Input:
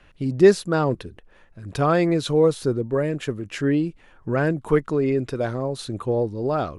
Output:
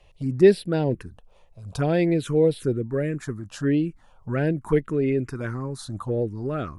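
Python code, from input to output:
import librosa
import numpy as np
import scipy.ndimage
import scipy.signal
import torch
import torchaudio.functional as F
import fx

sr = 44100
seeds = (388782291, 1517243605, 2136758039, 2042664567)

y = fx.env_phaser(x, sr, low_hz=250.0, high_hz=1200.0, full_db=-16.5)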